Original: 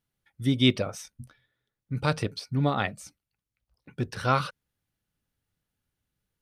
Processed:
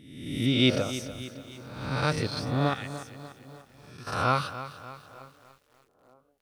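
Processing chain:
peak hold with a rise ahead of every peak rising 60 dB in 0.95 s
0:02.74–0:04.07: guitar amp tone stack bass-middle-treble 5-5-5
feedback echo with a band-pass in the loop 909 ms, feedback 54%, band-pass 430 Hz, level −23 dB
feedback echo at a low word length 293 ms, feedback 55%, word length 8 bits, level −13 dB
level −2.5 dB

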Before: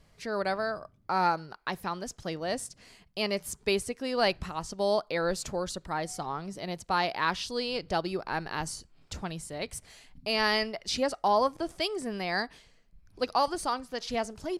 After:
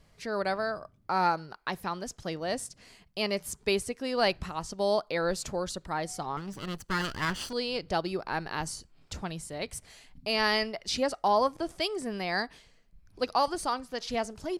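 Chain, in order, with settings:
0:06.37–0:07.53: lower of the sound and its delayed copy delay 0.66 ms

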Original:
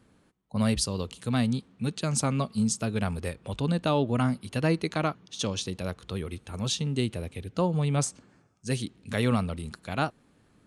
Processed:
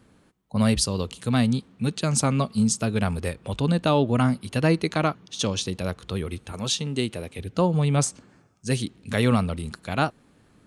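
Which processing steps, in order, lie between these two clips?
0:06.52–0:07.39: low-shelf EQ 150 Hz −10.5 dB
level +4.5 dB

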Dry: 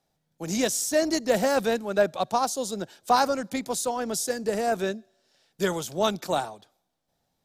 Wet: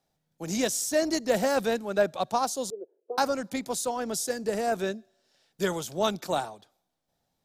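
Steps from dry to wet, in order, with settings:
0:02.70–0:03.18: flat-topped band-pass 430 Hz, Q 3.1
level −2 dB

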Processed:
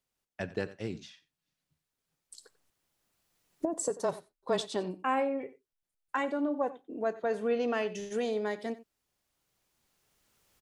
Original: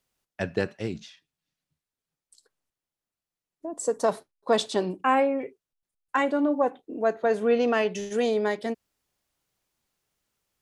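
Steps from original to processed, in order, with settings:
camcorder AGC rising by 8.4 dB per second
0:03.90–0:04.61: frequency shifter −23 Hz
on a send: single-tap delay 91 ms −17.5 dB
on the sum: level −7.5 dB

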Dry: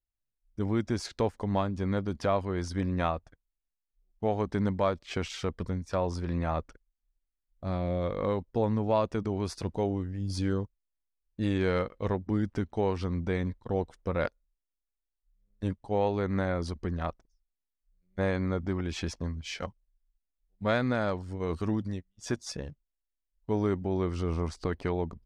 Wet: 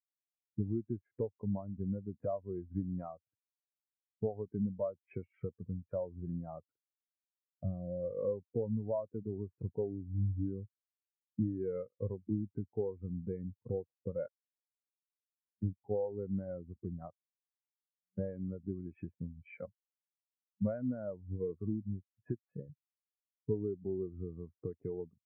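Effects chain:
downward compressor 10 to 1, threshold −40 dBFS, peak gain reduction 18.5 dB
elliptic band-pass filter 100–2,300 Hz
every bin expanded away from the loudest bin 2.5 to 1
level +6.5 dB

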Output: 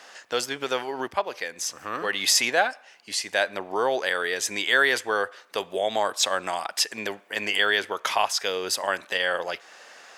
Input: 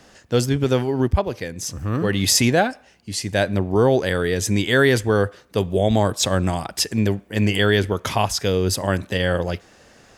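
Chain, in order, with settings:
high-pass filter 810 Hz 12 dB per octave
high-shelf EQ 5,700 Hz −7.5 dB
in parallel at +2 dB: downward compressor, threshold −39 dBFS, peak gain reduction 20.5 dB

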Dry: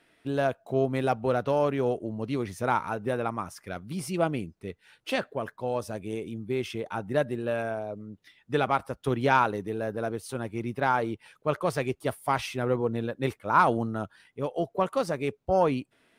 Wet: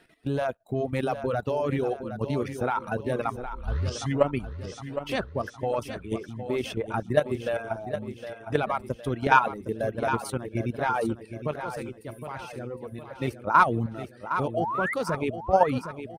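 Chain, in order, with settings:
spectral magnitudes quantised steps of 15 dB
reverb reduction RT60 1.2 s
0:03.36: tape start 1.00 s
low-shelf EQ 75 Hz +8.5 dB
output level in coarse steps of 11 dB
0:11.51–0:13.11: tuned comb filter 510 Hz, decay 0.58 s, mix 70%
0:14.54–0:14.94: sound drawn into the spectrogram rise 590–2,200 Hz −36 dBFS
repeating echo 762 ms, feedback 47%, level −10 dB
level +6.5 dB

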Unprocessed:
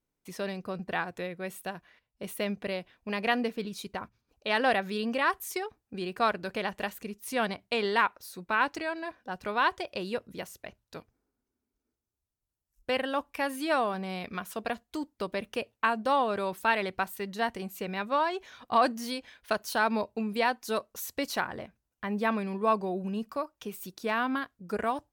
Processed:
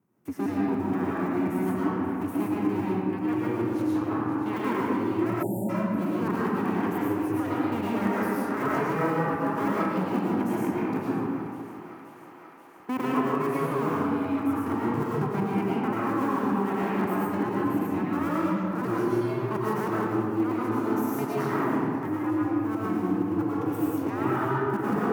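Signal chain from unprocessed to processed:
sub-harmonics by changed cycles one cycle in 2, inverted
reversed playback
downward compressor 6 to 1, threshold −39 dBFS, peak gain reduction 19 dB
reversed playback
low shelf with overshoot 420 Hz +11 dB, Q 1.5
on a send: feedback echo with a high-pass in the loop 529 ms, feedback 80%, high-pass 290 Hz, level −18 dB
on the sum: comb and all-pass reverb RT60 2.3 s, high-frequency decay 0.45×, pre-delay 70 ms, DRR −7 dB
speech leveller within 4 dB 0.5 s
high-pass filter 120 Hz 24 dB per octave
time-frequency box erased 0:05.43–0:05.69, 930–6,900 Hz
octave-band graphic EQ 1,000/4,000/8,000 Hz +9/−11/−4 dB

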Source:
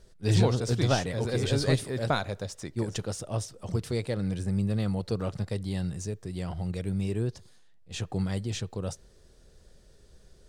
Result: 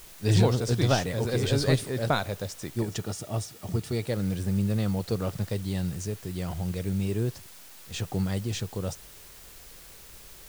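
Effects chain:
background noise white −51 dBFS
0:02.82–0:04.07: notch comb filter 520 Hz
level +1.5 dB

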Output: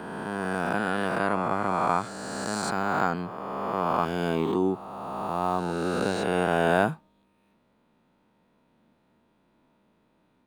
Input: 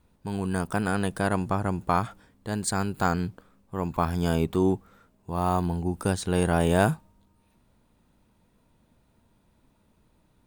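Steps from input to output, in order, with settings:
peak hold with a rise ahead of every peak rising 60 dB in 2.58 s
three-way crossover with the lows and the highs turned down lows −17 dB, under 160 Hz, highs −13 dB, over 4,000 Hz
level −2 dB

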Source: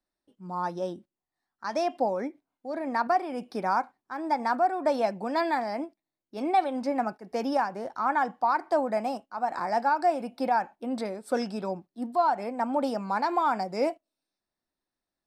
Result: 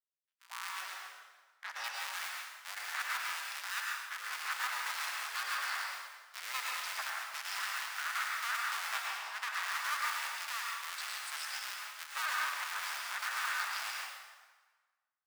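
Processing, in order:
sub-harmonics by changed cycles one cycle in 3, inverted
high-pass filter 1,400 Hz 24 dB per octave
noise gate with hold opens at −45 dBFS
0:08.90–0:09.53: high-shelf EQ 4,900 Hz −8.5 dB
brickwall limiter −24.5 dBFS, peak gain reduction 12.5 dB
0:00.81–0:01.84: spectral tilt −3 dB per octave
dense smooth reverb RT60 1.4 s, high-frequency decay 0.8×, pre-delay 90 ms, DRR −2 dB

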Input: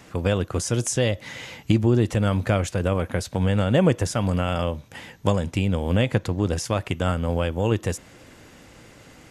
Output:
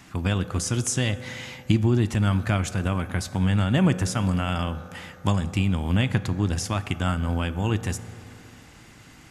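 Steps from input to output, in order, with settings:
parametric band 500 Hz −14 dB 0.55 octaves
on a send: convolution reverb RT60 3.0 s, pre-delay 3 ms, DRR 12 dB

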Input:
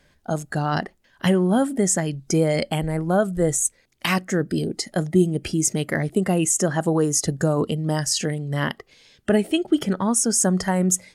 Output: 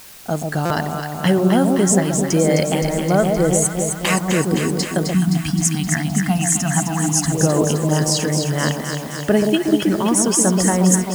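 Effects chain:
delay that swaps between a low-pass and a high-pass 130 ms, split 890 Hz, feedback 83%, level −4 dB
in parallel at −3 dB: bit-depth reduction 6 bits, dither triangular
on the sum: gain on a spectral selection 0:05.14–0:07.32, 320–660 Hz −24 dB
buffer that repeats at 0:00.65, samples 256
level −2 dB

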